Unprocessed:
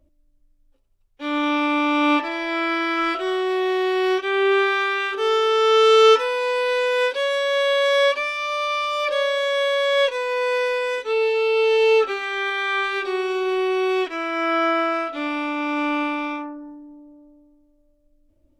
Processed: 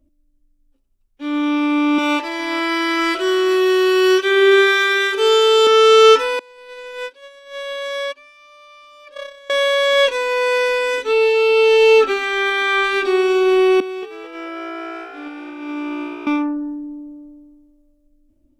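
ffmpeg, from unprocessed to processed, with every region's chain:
-filter_complex "[0:a]asettb=1/sr,asplit=3[s0][s1][s2];[s0]atrim=end=1.984[s3];[s1]atrim=start=1.98:end=5.67,asetpts=PTS-STARTPTS,afade=t=in:d=0.004:c=qsin,afade=t=out:st=3.686:d=0.004:c=qsin,bass=f=250:g=-9,treble=f=4000:g=6,aecho=1:1:2:0.63,atrim=end_sample=162729,aecho=1:1:413|826:0.126|0.0302,atrim=end_sample=162729[s4];[s2]atrim=start=5.666[s5];[s3][s4]acrossfade=d=0.004:c1=hsin:c2=qsin[s6];[s6][s5]acrossfade=d=0.004:c1=qsin:c2=hsin,asettb=1/sr,asplit=3[s7][s8][s9];[s7]atrim=end=6.394[s10];[s8]atrim=start=6.39:end=9.5,asetpts=PTS-STARTPTS,afade=t=in:d=0.004:c=qsin,afade=t=out:st=3.106:d=0.004:c=qsin,agate=range=0.0562:threshold=0.112:ratio=16:release=100:detection=peak,acompressor=threshold=0.0398:ratio=2.5:attack=3.2:release=140:knee=1:detection=peak[s11];[s9]atrim=start=9.496[s12];[s10][s11]acrossfade=d=0.004:c1=hsin:c2=qsin[s13];[s13][s12]acrossfade=d=0.004:c1=qsin:c2=hsin,asettb=1/sr,asplit=3[s14][s15][s16];[s14]atrim=end=13.804[s17];[s15]atrim=start=13.8:end=16.27,asetpts=PTS-STARTPTS,afade=t=in:d=0.004:c=qsin,afade=t=out:st=2.466:d=0.004:c=qsin,agate=range=0.112:threshold=0.0708:ratio=16:release=100:detection=peak,acompressor=threshold=0.02:ratio=6:attack=3.2:release=140:knee=1:detection=peak,asplit=8[s18][s19][s20][s21][s22][s23][s24][s25];[s19]adelay=216,afreqshift=60,volume=0.501[s26];[s20]adelay=432,afreqshift=120,volume=0.266[s27];[s21]adelay=648,afreqshift=180,volume=0.141[s28];[s22]adelay=864,afreqshift=240,volume=0.075[s29];[s23]adelay=1080,afreqshift=300,volume=0.0394[s30];[s24]adelay=1296,afreqshift=360,volume=0.0209[s31];[s25]adelay=1512,afreqshift=420,volume=0.0111[s32];[s18][s26][s27][s28][s29][s30][s31][s32]amix=inputs=8:normalize=0,atrim=end_sample=108927[s33];[s16]atrim=start=16.266[s34];[s17][s33]acrossfade=d=0.004:c1=hsin:c2=qsin[s35];[s35][s34]acrossfade=d=0.004:c1=qsin:c2=hsin,equalizer=f=125:t=o:w=1:g=-6,equalizer=f=250:t=o:w=1:g=8,equalizer=f=500:t=o:w=1:g=-6,equalizer=f=1000:t=o:w=1:g=-4,equalizer=f=2000:t=o:w=1:g=-3,equalizer=f=4000:t=o:w=1:g=-3,dynaudnorm=f=710:g=7:m=3.16"

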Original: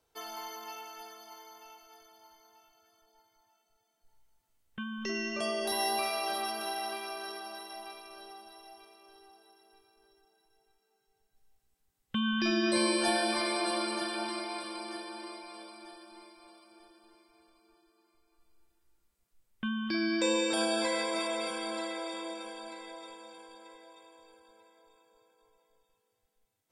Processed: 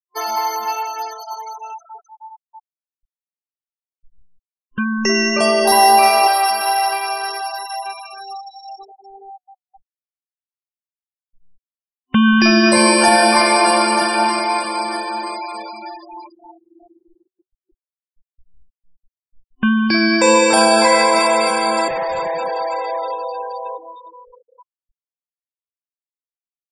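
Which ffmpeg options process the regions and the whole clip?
-filter_complex "[0:a]asettb=1/sr,asplit=3[s0][s1][s2];[s0]atrim=end=4.794[s3];[s1]atrim=start=4.79:end=5.38,asetpts=PTS-STARTPTS,afade=t=in:d=0.004:c=qsin,afade=t=out:st=0.586:d=0.004:c=qsin,asuperstop=centerf=3800:order=12:qfactor=1.5,highshelf=f=5000:g=7[s4];[s2]atrim=start=5.376[s5];[s3][s4]acrossfade=d=0.004:c1=hsin:c2=qsin[s6];[s6][s5]acrossfade=d=0.004:c1=qsin:c2=hsin,asettb=1/sr,asplit=3[s7][s8][s9];[s7]atrim=end=6.274[s10];[s8]atrim=start=6.27:end=8.79,asetpts=PTS-STARTPTS,afade=t=in:d=0.004:c=qsin,afade=t=out:st=2.516:d=0.004:c=qsin,highpass=f=940:p=1,bandreject=f=6200:w=14[s11];[s9]atrim=start=8.786[s12];[s10][s11]acrossfade=d=0.004:c1=hsin:c2=qsin[s13];[s13][s12]acrossfade=d=0.004:c1=qsin:c2=hsin,asettb=1/sr,asplit=3[s14][s15][s16];[s14]atrim=end=21.884[s17];[s15]atrim=start=21.88:end=23.78,asetpts=PTS-STARTPTS,afade=t=in:d=0.004:c=qsin,afade=t=out:st=1.896:d=0.004:c=qsin,highpass=f=550:t=q:w=3.3,asoftclip=type=hard:threshold=0.0112[s18];[s16]atrim=start=23.776[s19];[s17][s18]acrossfade=d=0.004:c1=hsin:c2=qsin[s20];[s20][s19]acrossfade=d=0.004:c1=qsin:c2=hsin,afftfilt=real='re*gte(hypot(re,im),0.00708)':imag='im*gte(hypot(re,im),0.00708)':win_size=1024:overlap=0.75,superequalizer=6b=0.501:9b=2:13b=0.316,alimiter=level_in=9.44:limit=0.891:release=50:level=0:latency=1,volume=0.891"

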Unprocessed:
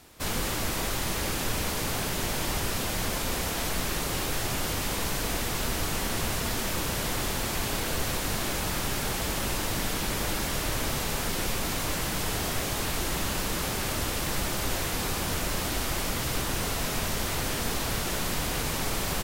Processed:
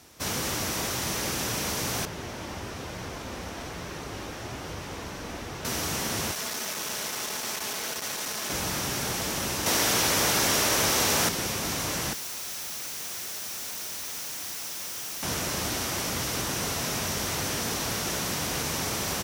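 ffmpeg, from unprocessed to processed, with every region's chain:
-filter_complex "[0:a]asettb=1/sr,asplit=3[s0][s1][s2];[s0]atrim=end=2.054[s3];[s1]atrim=start=2.05:end=5.65,asetpts=PTS-STARTPTS,afade=t=in:d=0.004:c=qsin,afade=t=out:st=3.596:d=0.004:c=qsin,lowpass=f=2100:p=1,flanger=delay=1.8:depth=2:regen=-67:speed=1.1:shape=triangular[s4];[s2]atrim=start=5.646[s5];[s3][s4]acrossfade=d=0.004:c1=hsin:c2=qsin[s6];[s6][s5]acrossfade=d=0.004:c1=qsin:c2=hsin,asettb=1/sr,asplit=3[s7][s8][s9];[s7]atrim=end=6.314[s10];[s8]atrim=start=6.31:end=8.5,asetpts=PTS-STARTPTS,afade=t=in:d=0.004:c=qsin,afade=t=out:st=2.186:d=0.004:c=qsin,aecho=1:1:4.7:0.3,atrim=end_sample=96579,asoftclip=type=hard:threshold=0.0422,highpass=f=510:p=1[s11];[s9]atrim=start=8.496[s12];[s10][s11]acrossfade=d=0.004:c1=hsin:c2=qsin[s13];[s13][s12]acrossfade=d=0.004:c1=qsin:c2=hsin,asettb=1/sr,asplit=3[s14][s15][s16];[s14]atrim=end=9.664[s17];[s15]atrim=start=9.66:end=11.29,asetpts=PTS-STARTPTS,afade=t=in:d=0.004:c=qsin,afade=t=out:st=1.626:d=0.004:c=qsin,highpass=100,aeval=exprs='0.126*sin(PI/2*1.58*val(0)/0.126)':c=same[s18];[s16]atrim=start=11.286[s19];[s17][s18]acrossfade=d=0.004:c1=hsin:c2=qsin[s20];[s20][s19]acrossfade=d=0.004:c1=qsin:c2=hsin,asettb=1/sr,asplit=3[s21][s22][s23];[s21]atrim=end=12.134[s24];[s22]atrim=start=12.13:end=15.23,asetpts=PTS-STARTPTS,afade=t=in:d=0.004:c=qsin,afade=t=out:st=3.096:d=0.004:c=qsin,asuperstop=centerf=930:order=12:qfactor=1.8,aeval=exprs='(mod(39.8*val(0)+1,2)-1)/39.8':c=same[s25];[s23]atrim=start=15.226[s26];[s24][s25]acrossfade=d=0.004:c1=hsin:c2=qsin[s27];[s27][s26]acrossfade=d=0.004:c1=qsin:c2=hsin,afftfilt=real='re*lt(hypot(re,im),0.251)':imag='im*lt(hypot(re,im),0.251)':win_size=1024:overlap=0.75,highpass=62,equalizer=f=5800:w=4.4:g=7.5"

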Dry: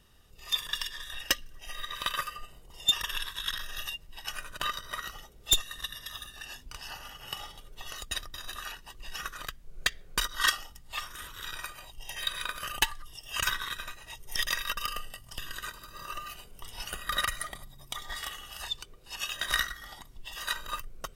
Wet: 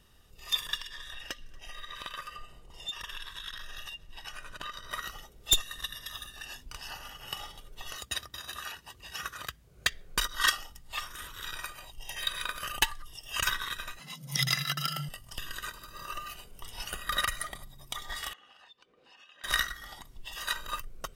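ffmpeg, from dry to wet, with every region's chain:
-filter_complex "[0:a]asettb=1/sr,asplit=3[s0][s1][s2];[s0]atrim=end=0.754[s3];[s1]atrim=start=0.75:end=4.91,asetpts=PTS-STARTPTS,afade=t=in:d=0.004:c=qsin,afade=t=out:st=4.156:d=0.004:c=qsin,highshelf=f=10000:g=-12,acompressor=threshold=0.0112:ratio=2.5:attack=3.2:release=140:knee=1:detection=peak,aecho=1:1:232:0.0631,atrim=end_sample=183456[s4];[s2]atrim=start=4.906[s5];[s3][s4]acrossfade=d=0.004:c1=hsin:c2=qsin[s6];[s6][s5]acrossfade=d=0.004:c1=qsin:c2=hsin,asettb=1/sr,asplit=3[s7][s8][s9];[s7]atrim=end=7.964[s10];[s8]atrim=start=7.96:end=9.89,asetpts=PTS-STARTPTS,afade=t=in:d=0.004:c=qsin,afade=t=out:st=1.926:d=0.004:c=qsin,highpass=f=63:w=0.5412,highpass=f=63:w=1.3066,asubboost=boost=2.5:cutoff=140[s11];[s9]atrim=start=9.886[s12];[s10][s11]acrossfade=d=0.004:c1=hsin:c2=qsin[s13];[s13][s12]acrossfade=d=0.004:c1=qsin:c2=hsin,asettb=1/sr,asplit=3[s14][s15][s16];[s14]atrim=end=13.994[s17];[s15]atrim=start=13.99:end=15.09,asetpts=PTS-STARTPTS,afade=t=in:d=0.004:c=qsin,afade=t=out:st=1.096:d=0.004:c=qsin,equalizer=f=4600:t=o:w=0.31:g=8.5,afreqshift=130[s18];[s16]atrim=start=15.086[s19];[s17][s18]acrossfade=d=0.004:c1=hsin:c2=qsin[s20];[s20][s19]acrossfade=d=0.004:c1=qsin:c2=hsin,asettb=1/sr,asplit=3[s21][s22][s23];[s21]atrim=end=18.334[s24];[s22]atrim=start=18.33:end=19.44,asetpts=PTS-STARTPTS,afade=t=in:d=0.004:c=qsin,afade=t=out:st=1.106:d=0.004:c=qsin,acompressor=threshold=0.00316:ratio=10:attack=3.2:release=140:knee=1:detection=peak,highpass=230,lowpass=3100,aecho=1:1:3.9:0.33,atrim=end_sample=48951[s25];[s23]atrim=start=19.436[s26];[s24][s25]acrossfade=d=0.004:c1=hsin:c2=qsin[s27];[s27][s26]acrossfade=d=0.004:c1=qsin:c2=hsin"

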